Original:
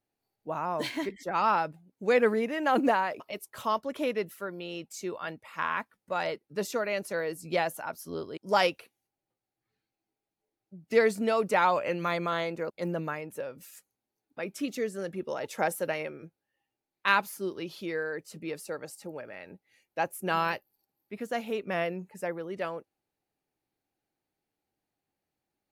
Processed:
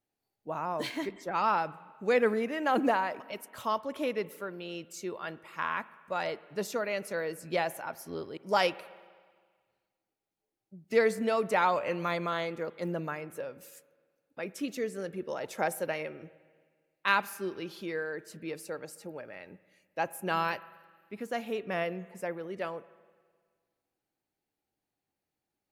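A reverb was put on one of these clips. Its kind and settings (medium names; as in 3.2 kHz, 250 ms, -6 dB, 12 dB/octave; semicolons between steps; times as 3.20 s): spring tank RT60 1.7 s, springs 43/52 ms, chirp 75 ms, DRR 18 dB; trim -2 dB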